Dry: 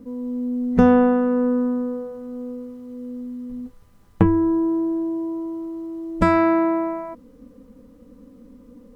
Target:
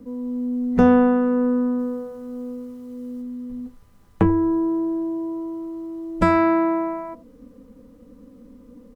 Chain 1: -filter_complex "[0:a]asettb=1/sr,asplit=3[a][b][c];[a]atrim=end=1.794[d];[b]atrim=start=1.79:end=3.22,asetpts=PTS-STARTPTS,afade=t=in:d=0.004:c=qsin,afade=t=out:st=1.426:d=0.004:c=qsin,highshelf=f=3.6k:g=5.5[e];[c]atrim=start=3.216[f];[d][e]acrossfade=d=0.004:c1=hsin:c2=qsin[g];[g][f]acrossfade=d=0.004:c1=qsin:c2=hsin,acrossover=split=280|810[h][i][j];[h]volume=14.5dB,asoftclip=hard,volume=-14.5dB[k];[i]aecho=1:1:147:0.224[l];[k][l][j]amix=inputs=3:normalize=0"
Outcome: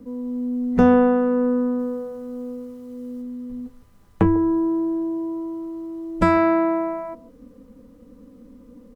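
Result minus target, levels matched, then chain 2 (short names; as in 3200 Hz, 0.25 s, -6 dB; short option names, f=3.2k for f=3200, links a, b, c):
echo 63 ms late
-filter_complex "[0:a]asettb=1/sr,asplit=3[a][b][c];[a]atrim=end=1.794[d];[b]atrim=start=1.79:end=3.22,asetpts=PTS-STARTPTS,afade=t=in:d=0.004:c=qsin,afade=t=out:st=1.426:d=0.004:c=qsin,highshelf=f=3.6k:g=5.5[e];[c]atrim=start=3.216[f];[d][e]acrossfade=d=0.004:c1=hsin:c2=qsin[g];[g][f]acrossfade=d=0.004:c1=qsin:c2=hsin,acrossover=split=280|810[h][i][j];[h]volume=14.5dB,asoftclip=hard,volume=-14.5dB[k];[i]aecho=1:1:84:0.224[l];[k][l][j]amix=inputs=3:normalize=0"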